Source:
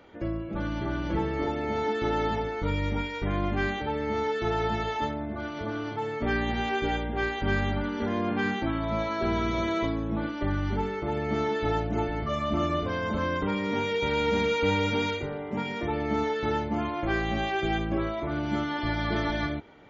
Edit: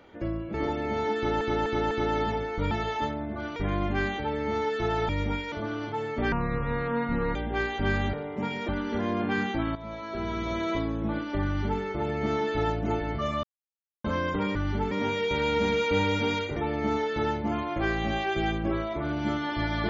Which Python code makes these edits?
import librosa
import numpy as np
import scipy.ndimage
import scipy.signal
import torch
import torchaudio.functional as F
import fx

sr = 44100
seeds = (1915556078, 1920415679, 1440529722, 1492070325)

y = fx.edit(x, sr, fx.cut(start_s=0.54, length_s=0.79),
    fx.repeat(start_s=1.95, length_s=0.25, count=4),
    fx.swap(start_s=2.75, length_s=0.43, other_s=4.71, other_length_s=0.85),
    fx.speed_span(start_s=6.36, length_s=0.62, speed=0.6),
    fx.fade_in_from(start_s=8.83, length_s=1.14, floor_db=-12.5),
    fx.duplicate(start_s=10.53, length_s=0.36, to_s=13.63),
    fx.silence(start_s=12.51, length_s=0.61),
    fx.move(start_s=15.28, length_s=0.55, to_s=7.76), tone=tone)